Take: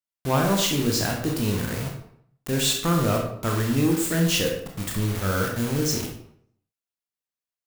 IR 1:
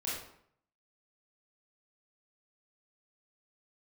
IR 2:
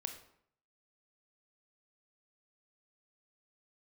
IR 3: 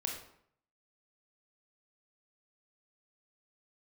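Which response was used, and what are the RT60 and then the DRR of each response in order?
3; 0.65, 0.65, 0.65 seconds; −8.0, 5.5, 0.5 decibels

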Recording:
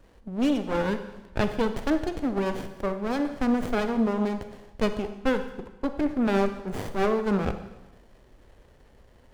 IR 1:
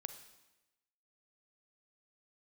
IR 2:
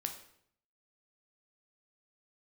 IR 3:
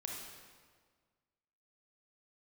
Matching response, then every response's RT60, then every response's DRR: 1; 1.0, 0.65, 1.7 seconds; 9.0, 4.0, −1.0 decibels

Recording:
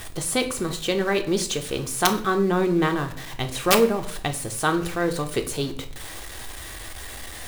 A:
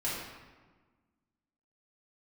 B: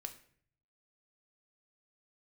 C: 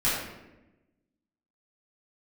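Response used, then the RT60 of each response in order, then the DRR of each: B; 1.4, 0.55, 1.0 seconds; −9.0, 5.0, −11.5 decibels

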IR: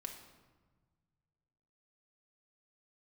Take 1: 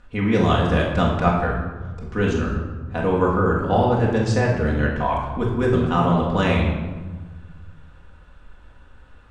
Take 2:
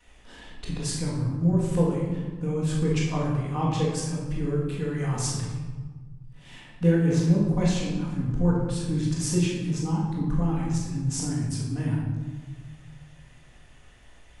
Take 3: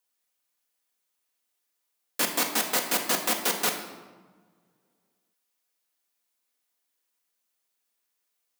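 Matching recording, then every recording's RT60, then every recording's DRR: 3; 1.4, 1.4, 1.4 seconds; −4.0, −13.0, 2.5 decibels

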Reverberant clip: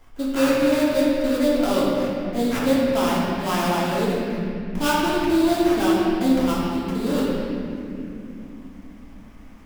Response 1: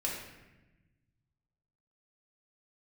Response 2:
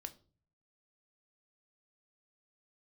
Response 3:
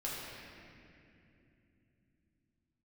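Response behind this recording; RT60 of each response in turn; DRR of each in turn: 3; 1.0, 0.40, 2.8 seconds; −4.0, 7.5, −7.0 decibels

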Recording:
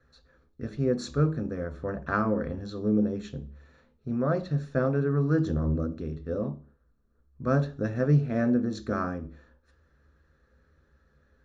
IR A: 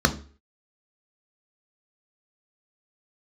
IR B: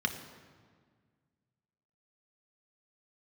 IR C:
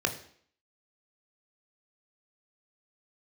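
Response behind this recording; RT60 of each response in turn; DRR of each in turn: A; 0.40, 1.7, 0.60 seconds; 6.5, 5.0, 5.0 decibels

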